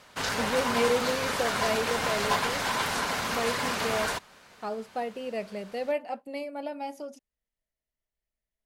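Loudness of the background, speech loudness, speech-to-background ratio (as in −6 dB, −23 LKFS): −28.5 LKFS, −33.0 LKFS, −4.5 dB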